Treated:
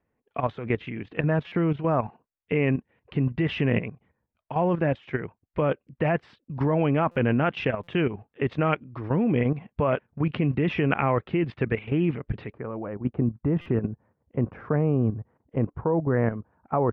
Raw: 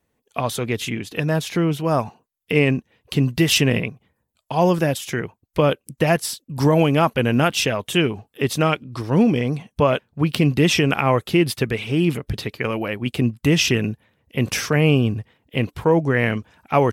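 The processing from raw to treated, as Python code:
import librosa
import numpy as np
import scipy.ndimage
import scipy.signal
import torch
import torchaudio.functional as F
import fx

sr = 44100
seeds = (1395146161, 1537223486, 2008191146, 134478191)

y = fx.lowpass(x, sr, hz=fx.steps((0.0, 2300.0), (12.52, 1300.0)), slope=24)
y = fx.level_steps(y, sr, step_db=11)
y = fx.buffer_glitch(y, sr, at_s=(1.47, 7.11, 7.83, 13.61), block=256, repeats=7)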